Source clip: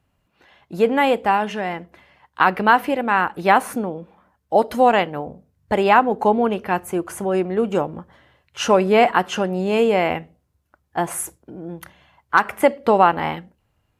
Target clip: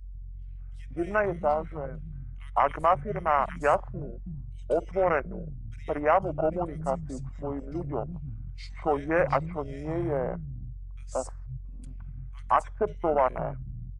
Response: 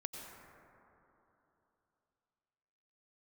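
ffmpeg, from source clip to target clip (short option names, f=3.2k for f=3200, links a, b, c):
-filter_complex "[0:a]acrossover=split=250|2800[a][b][c];[b]adelay=170[d];[a]adelay=500[e];[e][d][c]amix=inputs=3:normalize=0,aeval=exprs='val(0)+0.0158*(sin(2*PI*60*n/s)+sin(2*PI*2*60*n/s)/2+sin(2*PI*3*60*n/s)/3+sin(2*PI*4*60*n/s)/4+sin(2*PI*5*60*n/s)/5)':c=same,afwtdn=0.0708,asetrate=33038,aresample=44100,atempo=1.33484,apsyclip=7.5dB,equalizer=f=280:w=0.58:g=-14.5,volume=-7dB"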